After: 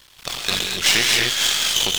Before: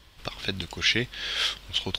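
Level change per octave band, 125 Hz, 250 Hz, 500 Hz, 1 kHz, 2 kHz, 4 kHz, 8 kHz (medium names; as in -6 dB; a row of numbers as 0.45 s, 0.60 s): +0.5 dB, +2.0 dB, +5.5 dB, +9.5 dB, +8.0 dB, +9.5 dB, +19.5 dB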